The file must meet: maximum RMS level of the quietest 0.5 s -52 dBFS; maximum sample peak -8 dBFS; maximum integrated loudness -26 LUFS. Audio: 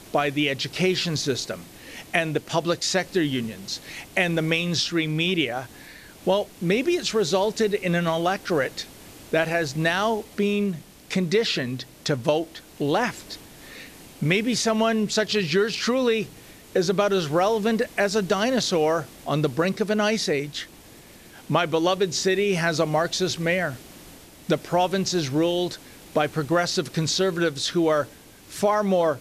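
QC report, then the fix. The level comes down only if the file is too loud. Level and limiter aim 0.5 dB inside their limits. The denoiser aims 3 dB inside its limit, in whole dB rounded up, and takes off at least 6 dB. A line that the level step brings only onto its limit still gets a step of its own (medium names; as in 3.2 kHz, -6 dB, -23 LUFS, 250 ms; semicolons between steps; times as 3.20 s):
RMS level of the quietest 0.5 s -47 dBFS: fail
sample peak -5.5 dBFS: fail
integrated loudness -24.0 LUFS: fail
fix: noise reduction 6 dB, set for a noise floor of -47 dBFS; trim -2.5 dB; peak limiter -8.5 dBFS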